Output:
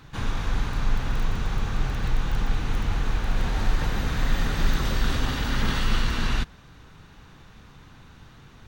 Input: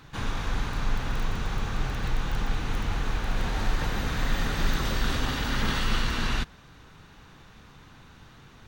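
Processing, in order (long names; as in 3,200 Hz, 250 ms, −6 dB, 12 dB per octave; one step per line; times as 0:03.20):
low-shelf EQ 190 Hz +4 dB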